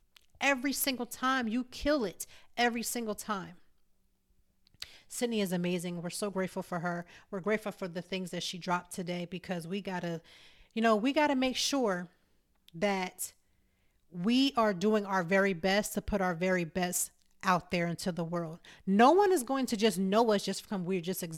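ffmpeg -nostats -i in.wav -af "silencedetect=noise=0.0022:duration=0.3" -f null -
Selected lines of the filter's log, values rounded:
silence_start: 3.62
silence_end: 4.67 | silence_duration: 1.05
silence_start: 12.07
silence_end: 12.68 | silence_duration: 0.61
silence_start: 13.33
silence_end: 14.12 | silence_duration: 0.79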